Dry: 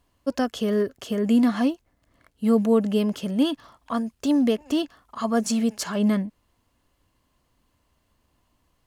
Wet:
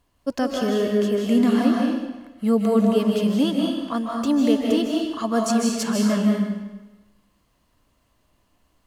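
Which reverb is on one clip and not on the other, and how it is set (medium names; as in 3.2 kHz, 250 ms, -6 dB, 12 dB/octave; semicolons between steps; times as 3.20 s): algorithmic reverb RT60 1.1 s, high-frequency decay 0.95×, pre-delay 115 ms, DRR -1 dB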